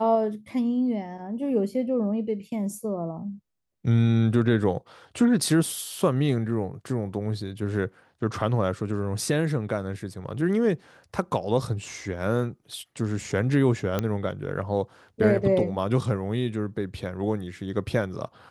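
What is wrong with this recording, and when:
13.99 s: pop -12 dBFS

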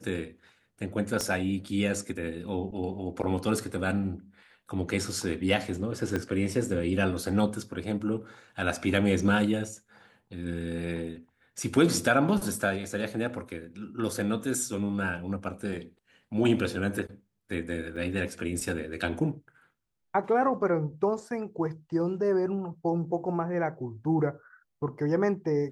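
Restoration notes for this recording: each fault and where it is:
1.21 s: pop -16 dBFS
6.16 s: pop -16 dBFS
17.96–17.97 s: dropout 5.8 ms

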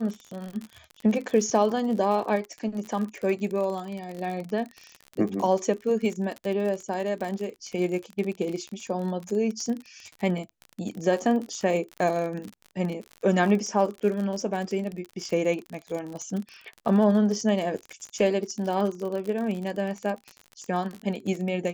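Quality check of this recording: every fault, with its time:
crackle 48 per s -31 dBFS

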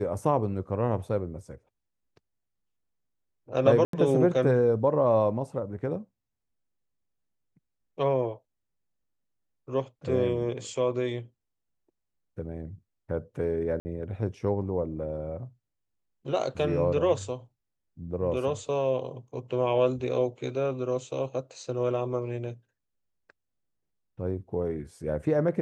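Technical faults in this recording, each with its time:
3.85–3.93 s: dropout 83 ms
13.80–13.85 s: dropout 50 ms

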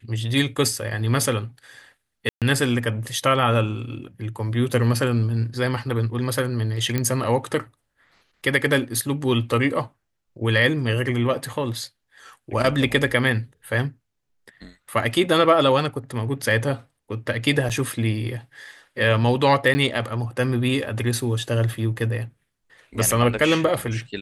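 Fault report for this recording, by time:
2.29–2.42 s: dropout 127 ms
6.98 s: pop -9 dBFS
17.69–17.70 s: dropout 7.4 ms
19.74–19.75 s: dropout 10 ms

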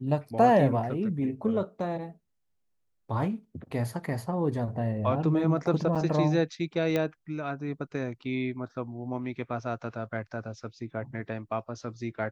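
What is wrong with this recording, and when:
5.95–5.96 s: dropout 6.3 ms
6.96 s: pop -15 dBFS

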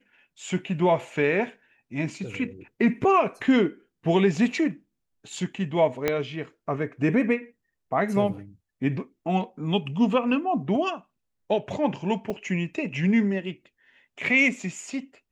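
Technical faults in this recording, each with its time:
6.08 s: pop -9 dBFS
12.30 s: dropout 3 ms

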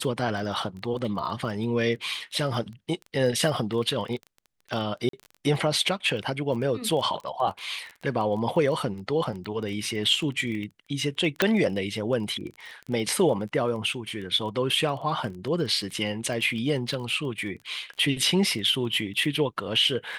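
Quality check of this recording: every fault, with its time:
crackle 15 per s -33 dBFS
5.09–5.13 s: dropout 43 ms
11.42 s: pop -6 dBFS

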